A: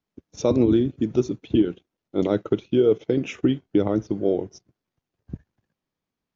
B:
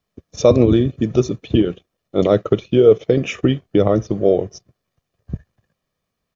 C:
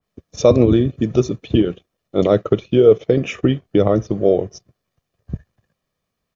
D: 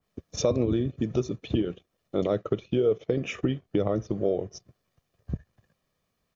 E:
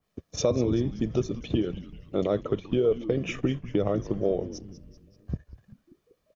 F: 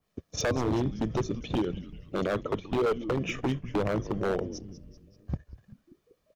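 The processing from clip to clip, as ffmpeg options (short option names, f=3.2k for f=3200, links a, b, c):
-af "aecho=1:1:1.7:0.47,volume=7.5dB"
-af "adynamicequalizer=threshold=0.02:dfrequency=2600:dqfactor=0.7:tfrequency=2600:tqfactor=0.7:attack=5:release=100:ratio=0.375:range=2:mode=cutabove:tftype=highshelf"
-af "acompressor=threshold=-31dB:ratio=2"
-filter_complex "[0:a]asplit=6[a][b][c][d][e][f];[b]adelay=193,afreqshift=-140,volume=-14dB[g];[c]adelay=386,afreqshift=-280,volume=-19.5dB[h];[d]adelay=579,afreqshift=-420,volume=-25dB[i];[e]adelay=772,afreqshift=-560,volume=-30.5dB[j];[f]adelay=965,afreqshift=-700,volume=-36.1dB[k];[a][g][h][i][j][k]amix=inputs=6:normalize=0"
-af "aeval=exprs='0.0944*(abs(mod(val(0)/0.0944+3,4)-2)-1)':c=same"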